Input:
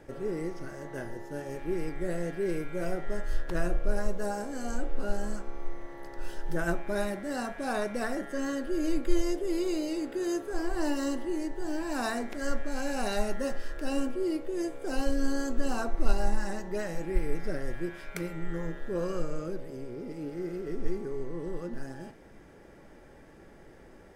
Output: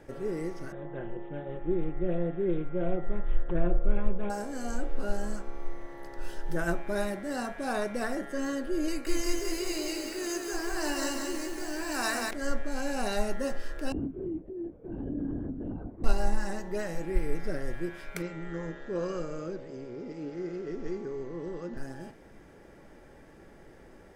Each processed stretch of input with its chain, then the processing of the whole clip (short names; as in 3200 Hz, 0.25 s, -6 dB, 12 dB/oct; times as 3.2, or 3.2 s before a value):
0.72–4.3 bell 2900 Hz -14.5 dB 1.6 oct + comb 5.7 ms, depth 57% + careless resampling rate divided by 6×, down none, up filtered
8.88–12.31 Butterworth band-stop 3400 Hz, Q 4.2 + tilt shelf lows -6.5 dB, about 910 Hz + lo-fi delay 0.185 s, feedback 55%, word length 8-bit, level -3 dB
13.92–16.04 band-pass 240 Hz, Q 2 + LPC vocoder at 8 kHz whisper
18.22–21.77 steep low-pass 7600 Hz 96 dB/oct + low shelf 69 Hz -12 dB
whole clip: dry